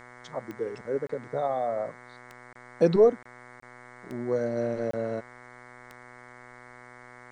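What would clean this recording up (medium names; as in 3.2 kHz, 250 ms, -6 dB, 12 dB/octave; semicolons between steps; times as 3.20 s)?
de-click; de-hum 123.1 Hz, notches 18; interpolate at 1.07/2.53/3.23/3.60/4.91 s, 24 ms; expander -42 dBFS, range -21 dB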